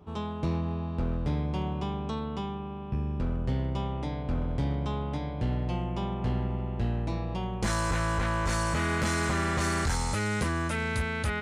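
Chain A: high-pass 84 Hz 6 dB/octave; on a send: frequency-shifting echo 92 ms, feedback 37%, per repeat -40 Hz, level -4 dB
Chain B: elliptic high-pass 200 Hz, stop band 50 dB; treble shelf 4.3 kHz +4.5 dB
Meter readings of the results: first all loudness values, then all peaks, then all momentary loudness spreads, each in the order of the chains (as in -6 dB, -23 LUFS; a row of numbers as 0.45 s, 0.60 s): -30.5 LUFS, -33.5 LUFS; -16.0 dBFS, -17.0 dBFS; 6 LU, 9 LU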